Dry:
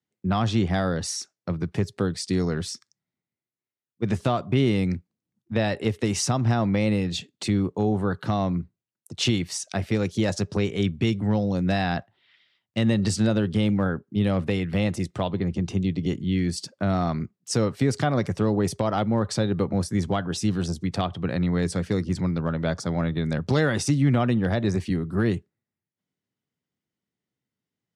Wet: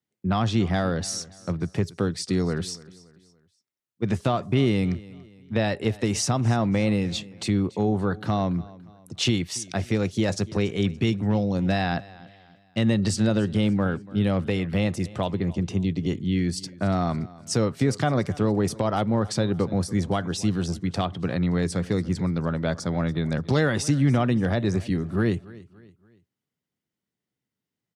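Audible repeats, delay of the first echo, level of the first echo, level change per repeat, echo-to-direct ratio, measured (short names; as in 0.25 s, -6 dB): 2, 0.286 s, -20.5 dB, -7.5 dB, -19.5 dB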